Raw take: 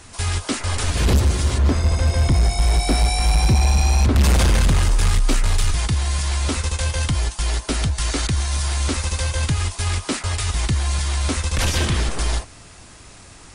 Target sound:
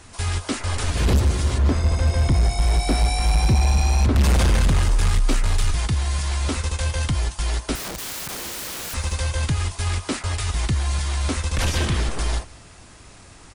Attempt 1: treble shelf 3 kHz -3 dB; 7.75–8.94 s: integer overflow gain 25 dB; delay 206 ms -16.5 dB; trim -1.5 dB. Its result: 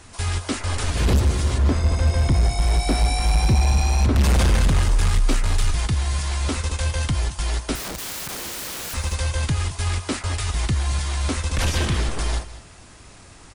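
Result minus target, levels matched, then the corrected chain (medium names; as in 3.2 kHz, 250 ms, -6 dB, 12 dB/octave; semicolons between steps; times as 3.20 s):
echo-to-direct +8.5 dB
treble shelf 3 kHz -3 dB; 7.75–8.94 s: integer overflow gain 25 dB; delay 206 ms -25 dB; trim -1.5 dB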